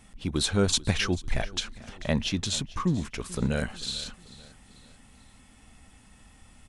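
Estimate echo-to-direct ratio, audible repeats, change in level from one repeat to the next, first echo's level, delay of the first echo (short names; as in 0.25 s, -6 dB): -18.5 dB, 3, -7.0 dB, -19.5 dB, 0.44 s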